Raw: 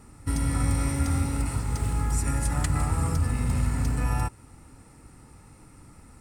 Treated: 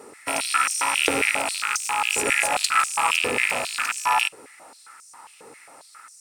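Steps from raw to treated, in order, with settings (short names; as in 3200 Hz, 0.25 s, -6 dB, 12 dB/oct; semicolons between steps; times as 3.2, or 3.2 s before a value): rattling part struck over -29 dBFS, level -21 dBFS; overloaded stage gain 18.5 dB; stepped high-pass 7.4 Hz 450–6000 Hz; gain +8 dB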